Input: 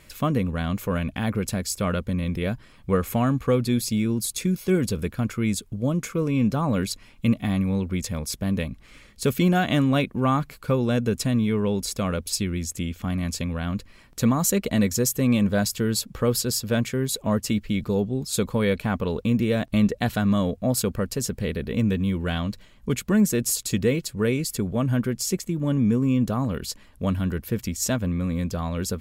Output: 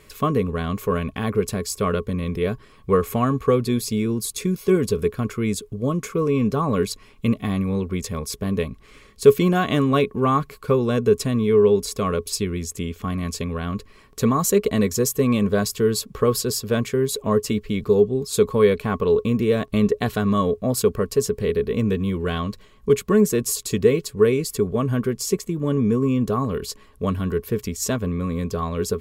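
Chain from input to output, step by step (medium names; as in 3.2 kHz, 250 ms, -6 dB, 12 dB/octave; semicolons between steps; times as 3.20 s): small resonant body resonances 420/1100 Hz, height 16 dB, ringing for 95 ms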